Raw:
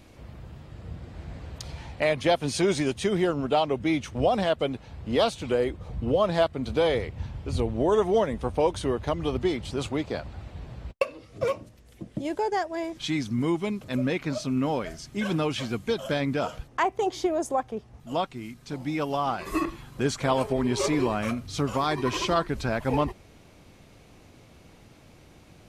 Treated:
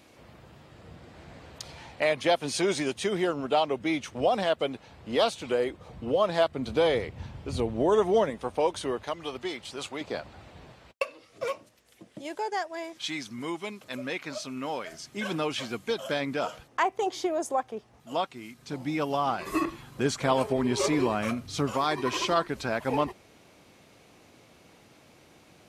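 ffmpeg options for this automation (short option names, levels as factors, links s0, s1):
-af "asetnsamples=n=441:p=0,asendcmd='6.47 highpass f 150;8.3 highpass f 440;9.03 highpass f 970;10.01 highpass f 340;10.72 highpass f 850;14.92 highpass f 400;18.59 highpass f 130;21.71 highpass f 290',highpass=f=350:p=1"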